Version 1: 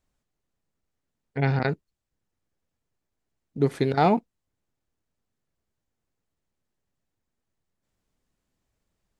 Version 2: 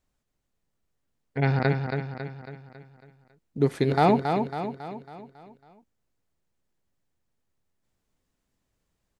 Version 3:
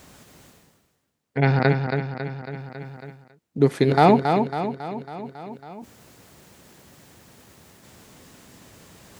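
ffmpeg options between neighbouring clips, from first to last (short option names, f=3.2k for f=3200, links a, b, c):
-af "aecho=1:1:275|550|825|1100|1375|1650:0.501|0.251|0.125|0.0626|0.0313|0.0157"
-af "highpass=99,areverse,acompressor=mode=upward:threshold=-32dB:ratio=2.5,areverse,volume=5dB"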